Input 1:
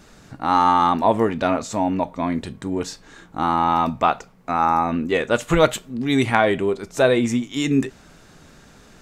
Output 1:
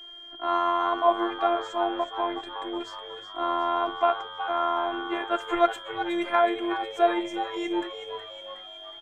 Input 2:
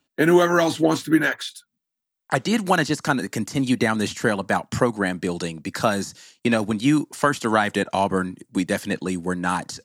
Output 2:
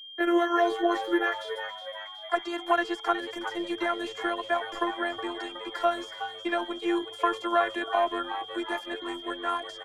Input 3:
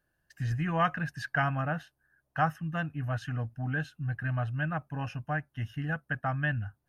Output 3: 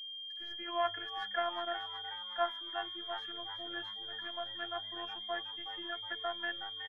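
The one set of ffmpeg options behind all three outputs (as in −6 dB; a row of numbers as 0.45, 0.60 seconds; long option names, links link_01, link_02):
-filter_complex "[0:a]afftfilt=real='hypot(re,im)*cos(PI*b)':imag='0':win_size=512:overlap=0.75,acrossover=split=390 2000:gain=0.2 1 0.158[link_01][link_02][link_03];[link_01][link_02][link_03]amix=inputs=3:normalize=0,acrossover=split=300|2000[link_04][link_05][link_06];[link_04]asoftclip=type=tanh:threshold=-32.5dB[link_07];[link_07][link_05][link_06]amix=inputs=3:normalize=0,aeval=exprs='val(0)+0.00794*sin(2*PI*3200*n/s)':channel_layout=same,asplit=7[link_08][link_09][link_10][link_11][link_12][link_13][link_14];[link_09]adelay=368,afreqshift=100,volume=-10.5dB[link_15];[link_10]adelay=736,afreqshift=200,volume=-15.9dB[link_16];[link_11]adelay=1104,afreqshift=300,volume=-21.2dB[link_17];[link_12]adelay=1472,afreqshift=400,volume=-26.6dB[link_18];[link_13]adelay=1840,afreqshift=500,volume=-31.9dB[link_19];[link_14]adelay=2208,afreqshift=600,volume=-37.3dB[link_20];[link_08][link_15][link_16][link_17][link_18][link_19][link_20]amix=inputs=7:normalize=0"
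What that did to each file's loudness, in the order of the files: −6.5, −7.0, −5.5 LU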